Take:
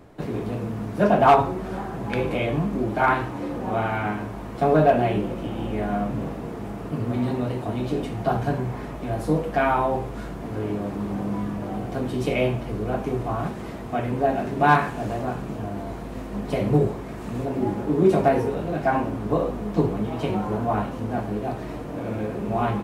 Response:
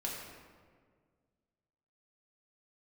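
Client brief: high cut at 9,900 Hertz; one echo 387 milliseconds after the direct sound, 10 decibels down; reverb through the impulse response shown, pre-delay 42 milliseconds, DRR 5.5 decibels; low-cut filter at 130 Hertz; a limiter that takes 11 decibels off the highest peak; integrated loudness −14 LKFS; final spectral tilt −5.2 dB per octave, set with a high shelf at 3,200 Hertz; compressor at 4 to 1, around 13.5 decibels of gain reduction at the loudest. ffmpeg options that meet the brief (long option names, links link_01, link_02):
-filter_complex "[0:a]highpass=130,lowpass=9900,highshelf=frequency=3200:gain=-8,acompressor=threshold=-29dB:ratio=4,alimiter=level_in=4.5dB:limit=-24dB:level=0:latency=1,volume=-4.5dB,aecho=1:1:387:0.316,asplit=2[link_01][link_02];[1:a]atrim=start_sample=2205,adelay=42[link_03];[link_02][link_03]afir=irnorm=-1:irlink=0,volume=-7.5dB[link_04];[link_01][link_04]amix=inputs=2:normalize=0,volume=21.5dB"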